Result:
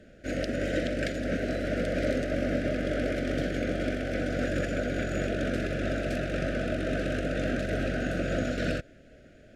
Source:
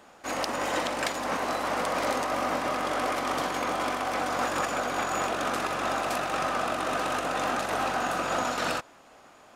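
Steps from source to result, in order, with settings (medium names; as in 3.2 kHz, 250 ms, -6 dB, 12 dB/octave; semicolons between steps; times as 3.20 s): elliptic band-stop 630–1500 Hz, stop band 80 dB; RIAA curve playback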